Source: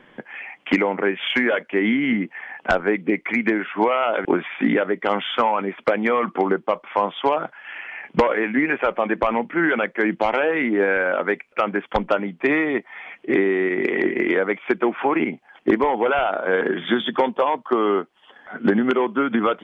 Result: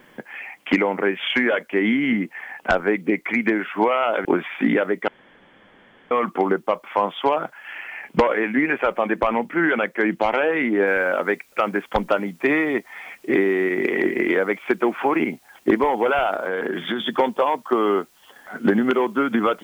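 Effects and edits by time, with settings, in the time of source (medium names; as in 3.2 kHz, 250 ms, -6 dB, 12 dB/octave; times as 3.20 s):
5.08–6.11 s: room tone
10.87 s: noise floor step -66 dB -58 dB
16.34–17.07 s: compression, threshold -20 dBFS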